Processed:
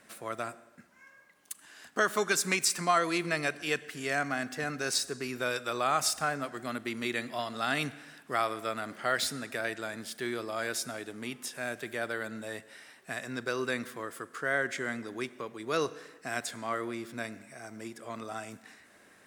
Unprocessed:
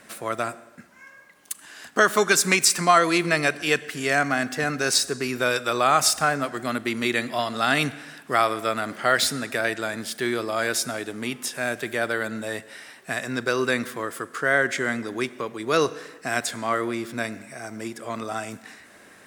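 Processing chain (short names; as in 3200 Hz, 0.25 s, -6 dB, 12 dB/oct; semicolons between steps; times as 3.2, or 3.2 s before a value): 6.51–8.21 crackle 480/s -52 dBFS; gain -9 dB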